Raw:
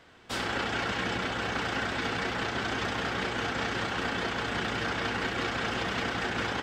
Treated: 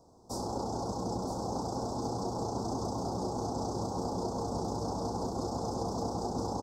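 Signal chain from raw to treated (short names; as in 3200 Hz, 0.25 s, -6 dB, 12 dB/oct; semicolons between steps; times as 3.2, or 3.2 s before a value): elliptic band-stop 930–5300 Hz, stop band 50 dB; echo 0.971 s -8 dB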